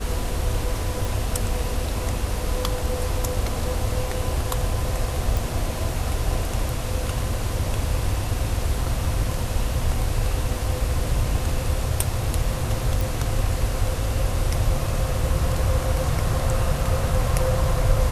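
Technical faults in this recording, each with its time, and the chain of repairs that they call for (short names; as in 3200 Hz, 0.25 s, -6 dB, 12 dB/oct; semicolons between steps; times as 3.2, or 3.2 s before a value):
1.05 pop
5.37 pop
13.01 pop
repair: de-click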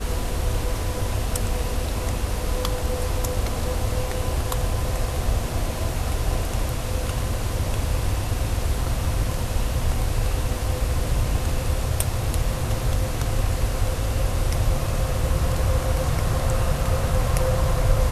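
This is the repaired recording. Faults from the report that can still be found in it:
none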